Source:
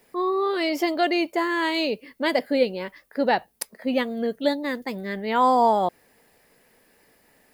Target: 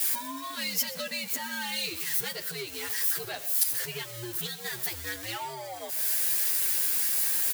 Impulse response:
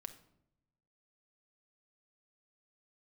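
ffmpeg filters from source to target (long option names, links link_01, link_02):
-filter_complex "[0:a]aeval=exprs='val(0)+0.5*0.0251*sgn(val(0))':channel_layout=same,afreqshift=-110,lowshelf=frequency=360:gain=-8,acompressor=threshold=-29dB:ratio=6,asoftclip=type=tanh:threshold=-26dB,crystalizer=i=8.5:c=0,asplit=2[link_01][link_02];[1:a]atrim=start_sample=2205,adelay=124[link_03];[link_02][link_03]afir=irnorm=-1:irlink=0,volume=-12dB[link_04];[link_01][link_04]amix=inputs=2:normalize=0,asplit=2[link_05][link_06];[link_06]adelay=9.6,afreqshift=-2[link_07];[link_05][link_07]amix=inputs=2:normalize=1,volume=-5dB"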